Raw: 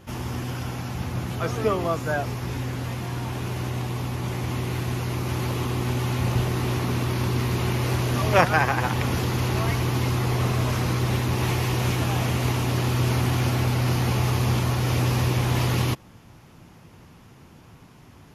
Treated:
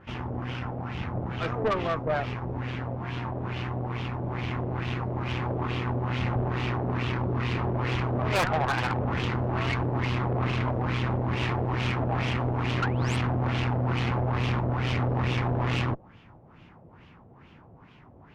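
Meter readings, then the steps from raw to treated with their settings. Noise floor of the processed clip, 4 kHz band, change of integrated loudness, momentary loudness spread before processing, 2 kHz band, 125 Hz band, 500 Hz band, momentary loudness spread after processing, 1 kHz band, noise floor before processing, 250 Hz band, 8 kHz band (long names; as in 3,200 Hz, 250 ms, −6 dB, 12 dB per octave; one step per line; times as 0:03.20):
−53 dBFS, −5.0 dB, −4.0 dB, 7 LU, −3.0 dB, −4.5 dB, −3.0 dB, 6 LU, −2.5 dB, −50 dBFS, −3.0 dB, −15.0 dB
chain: sound drawn into the spectrogram rise, 0:12.82–0:13.17, 1,300–9,300 Hz −24 dBFS
auto-filter low-pass sine 2.3 Hz 590–3,100 Hz
tube saturation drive 21 dB, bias 0.7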